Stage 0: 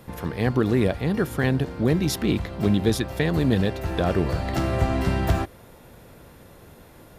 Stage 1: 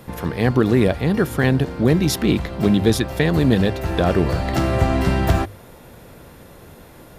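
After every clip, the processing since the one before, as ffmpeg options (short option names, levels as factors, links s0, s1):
-af "bandreject=f=50:t=h:w=6,bandreject=f=100:t=h:w=6,volume=1.78"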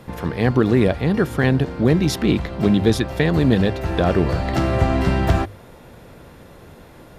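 -af "highshelf=f=9300:g=-11"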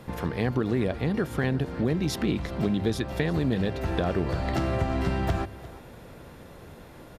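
-af "acompressor=threshold=0.0794:ratio=2.5,aecho=1:1:351:0.126,volume=0.708"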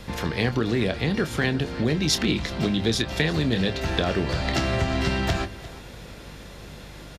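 -filter_complex "[0:a]aeval=exprs='val(0)+0.00562*(sin(2*PI*50*n/s)+sin(2*PI*2*50*n/s)/2+sin(2*PI*3*50*n/s)/3+sin(2*PI*4*50*n/s)/4+sin(2*PI*5*50*n/s)/5)':c=same,acrossover=split=390|1100|6300[s0][s1][s2][s3];[s2]crystalizer=i=6:c=0[s4];[s0][s1][s4][s3]amix=inputs=4:normalize=0,asplit=2[s5][s6];[s6]adelay=26,volume=0.299[s7];[s5][s7]amix=inputs=2:normalize=0,volume=1.19"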